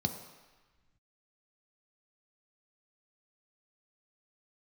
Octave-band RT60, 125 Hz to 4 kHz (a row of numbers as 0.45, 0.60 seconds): 1.9, 1.3, 1.1, 1.3, 1.5, 1.2 seconds